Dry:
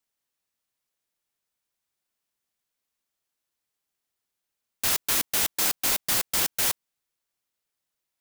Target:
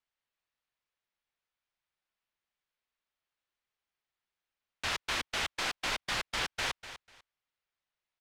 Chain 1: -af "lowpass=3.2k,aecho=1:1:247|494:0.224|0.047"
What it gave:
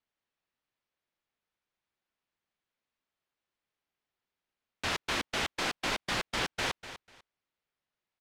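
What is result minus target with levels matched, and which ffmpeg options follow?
250 Hz band +6.5 dB
-af "lowpass=3.2k,equalizer=f=250:t=o:w=2.6:g=-8,aecho=1:1:247|494:0.224|0.047"

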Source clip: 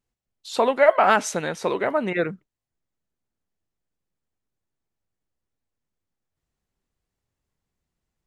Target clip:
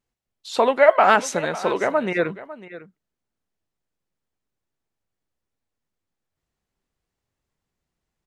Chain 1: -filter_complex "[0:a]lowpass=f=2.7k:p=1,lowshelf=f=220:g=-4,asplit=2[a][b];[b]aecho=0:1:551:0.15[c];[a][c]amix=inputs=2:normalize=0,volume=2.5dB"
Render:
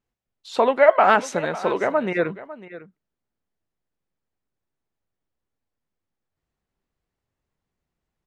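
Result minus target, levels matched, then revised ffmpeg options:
8000 Hz band -5.5 dB
-filter_complex "[0:a]lowpass=f=7.6k:p=1,lowshelf=f=220:g=-4,asplit=2[a][b];[b]aecho=0:1:551:0.15[c];[a][c]amix=inputs=2:normalize=0,volume=2.5dB"

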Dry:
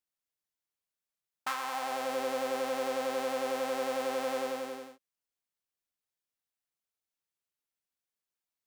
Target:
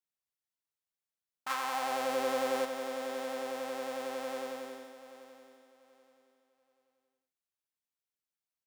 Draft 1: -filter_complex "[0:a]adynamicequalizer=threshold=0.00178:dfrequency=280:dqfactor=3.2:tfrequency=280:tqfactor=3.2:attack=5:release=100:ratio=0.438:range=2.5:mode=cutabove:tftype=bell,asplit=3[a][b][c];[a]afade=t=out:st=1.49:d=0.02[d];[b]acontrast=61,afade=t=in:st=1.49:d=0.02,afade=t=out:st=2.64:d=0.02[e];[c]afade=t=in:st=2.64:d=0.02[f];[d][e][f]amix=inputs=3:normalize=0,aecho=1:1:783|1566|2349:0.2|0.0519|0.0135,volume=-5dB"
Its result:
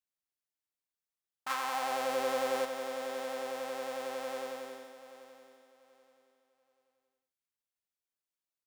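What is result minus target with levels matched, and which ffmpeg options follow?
250 Hz band -3.5 dB
-filter_complex "[0:a]adynamicequalizer=threshold=0.00178:dfrequency=96:dqfactor=3.2:tfrequency=96:tqfactor=3.2:attack=5:release=100:ratio=0.438:range=2.5:mode=cutabove:tftype=bell,asplit=3[a][b][c];[a]afade=t=out:st=1.49:d=0.02[d];[b]acontrast=61,afade=t=in:st=1.49:d=0.02,afade=t=out:st=2.64:d=0.02[e];[c]afade=t=in:st=2.64:d=0.02[f];[d][e][f]amix=inputs=3:normalize=0,aecho=1:1:783|1566|2349:0.2|0.0519|0.0135,volume=-5dB"

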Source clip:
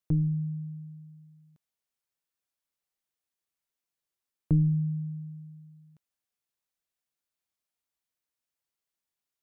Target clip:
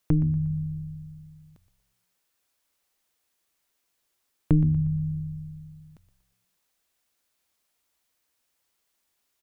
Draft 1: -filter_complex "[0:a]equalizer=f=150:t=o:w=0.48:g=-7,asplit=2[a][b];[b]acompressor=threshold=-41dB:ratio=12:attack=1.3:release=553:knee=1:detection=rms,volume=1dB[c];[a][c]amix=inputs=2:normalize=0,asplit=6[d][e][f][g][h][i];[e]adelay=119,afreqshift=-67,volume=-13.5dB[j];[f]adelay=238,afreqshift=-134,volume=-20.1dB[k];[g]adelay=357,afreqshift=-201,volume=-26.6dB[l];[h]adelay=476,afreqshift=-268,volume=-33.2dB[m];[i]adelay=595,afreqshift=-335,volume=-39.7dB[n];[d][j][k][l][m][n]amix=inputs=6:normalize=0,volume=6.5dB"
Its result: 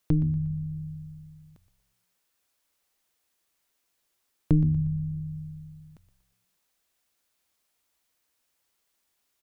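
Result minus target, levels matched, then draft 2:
compressor: peak gain reduction +7 dB
-filter_complex "[0:a]equalizer=f=150:t=o:w=0.48:g=-7,asplit=2[a][b];[b]acompressor=threshold=-33.5dB:ratio=12:attack=1.3:release=553:knee=1:detection=rms,volume=1dB[c];[a][c]amix=inputs=2:normalize=0,asplit=6[d][e][f][g][h][i];[e]adelay=119,afreqshift=-67,volume=-13.5dB[j];[f]adelay=238,afreqshift=-134,volume=-20.1dB[k];[g]adelay=357,afreqshift=-201,volume=-26.6dB[l];[h]adelay=476,afreqshift=-268,volume=-33.2dB[m];[i]adelay=595,afreqshift=-335,volume=-39.7dB[n];[d][j][k][l][m][n]amix=inputs=6:normalize=0,volume=6.5dB"

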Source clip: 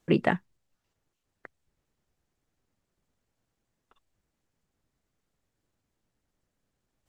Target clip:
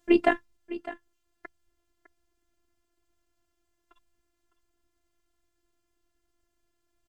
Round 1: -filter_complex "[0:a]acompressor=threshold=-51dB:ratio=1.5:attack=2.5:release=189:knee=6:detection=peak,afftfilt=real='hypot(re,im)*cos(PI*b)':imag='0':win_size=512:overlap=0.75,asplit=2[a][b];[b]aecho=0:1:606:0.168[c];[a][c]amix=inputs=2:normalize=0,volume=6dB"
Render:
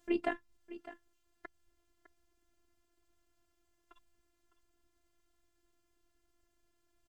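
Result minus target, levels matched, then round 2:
compressor: peak gain reduction +12.5 dB
-filter_complex "[0:a]afftfilt=real='hypot(re,im)*cos(PI*b)':imag='0':win_size=512:overlap=0.75,asplit=2[a][b];[b]aecho=0:1:606:0.168[c];[a][c]amix=inputs=2:normalize=0,volume=6dB"

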